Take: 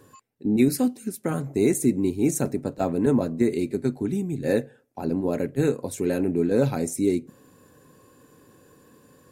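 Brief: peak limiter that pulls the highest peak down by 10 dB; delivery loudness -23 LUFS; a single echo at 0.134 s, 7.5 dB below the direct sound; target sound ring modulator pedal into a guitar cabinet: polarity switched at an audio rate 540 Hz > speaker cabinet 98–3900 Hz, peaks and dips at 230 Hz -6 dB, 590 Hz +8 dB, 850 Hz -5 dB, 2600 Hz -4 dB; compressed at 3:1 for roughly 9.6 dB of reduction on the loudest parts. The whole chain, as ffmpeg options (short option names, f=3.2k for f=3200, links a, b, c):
-af "acompressor=threshold=-28dB:ratio=3,alimiter=level_in=0.5dB:limit=-24dB:level=0:latency=1,volume=-0.5dB,aecho=1:1:134:0.422,aeval=exprs='val(0)*sgn(sin(2*PI*540*n/s))':c=same,highpass=98,equalizer=f=230:t=q:w=4:g=-6,equalizer=f=590:t=q:w=4:g=8,equalizer=f=850:t=q:w=4:g=-5,equalizer=f=2.6k:t=q:w=4:g=-4,lowpass=f=3.9k:w=0.5412,lowpass=f=3.9k:w=1.3066,volume=12.5dB"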